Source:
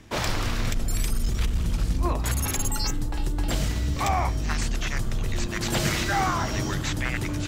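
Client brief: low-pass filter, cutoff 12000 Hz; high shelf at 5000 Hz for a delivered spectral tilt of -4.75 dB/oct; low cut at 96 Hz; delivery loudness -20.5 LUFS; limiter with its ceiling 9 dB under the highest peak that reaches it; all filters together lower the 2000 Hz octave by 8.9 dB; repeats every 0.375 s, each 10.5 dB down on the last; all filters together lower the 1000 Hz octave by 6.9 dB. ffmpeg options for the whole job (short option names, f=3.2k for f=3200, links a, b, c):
-af "highpass=96,lowpass=12k,equalizer=f=1k:t=o:g=-7.5,equalizer=f=2k:t=o:g=-8,highshelf=f=5k:g=-5.5,alimiter=limit=-22.5dB:level=0:latency=1,aecho=1:1:375|750|1125:0.299|0.0896|0.0269,volume=12dB"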